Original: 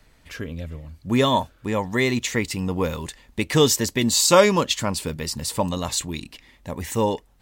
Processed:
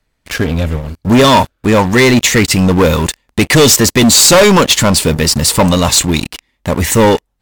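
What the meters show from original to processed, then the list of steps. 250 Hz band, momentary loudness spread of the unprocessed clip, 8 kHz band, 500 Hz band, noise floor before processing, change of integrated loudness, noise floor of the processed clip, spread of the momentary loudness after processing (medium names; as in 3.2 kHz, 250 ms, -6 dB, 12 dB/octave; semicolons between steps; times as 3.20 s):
+13.5 dB, 18 LU, +14.0 dB, +11.0 dB, -57 dBFS, +12.0 dB, -67 dBFS, 12 LU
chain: waveshaping leveller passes 5; MP3 320 kbps 48 kHz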